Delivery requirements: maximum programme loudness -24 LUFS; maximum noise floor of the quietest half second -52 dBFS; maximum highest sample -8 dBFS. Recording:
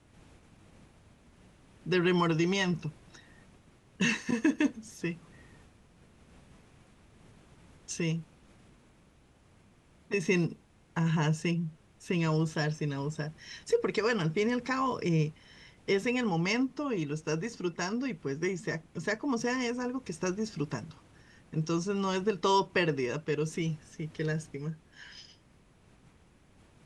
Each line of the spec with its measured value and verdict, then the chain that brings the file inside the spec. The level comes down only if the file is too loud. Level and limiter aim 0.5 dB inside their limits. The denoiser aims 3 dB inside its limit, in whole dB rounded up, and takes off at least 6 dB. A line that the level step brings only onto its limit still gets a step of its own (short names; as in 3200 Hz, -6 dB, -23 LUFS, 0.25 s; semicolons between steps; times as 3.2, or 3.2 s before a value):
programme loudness -31.5 LUFS: OK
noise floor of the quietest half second -62 dBFS: OK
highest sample -15.5 dBFS: OK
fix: none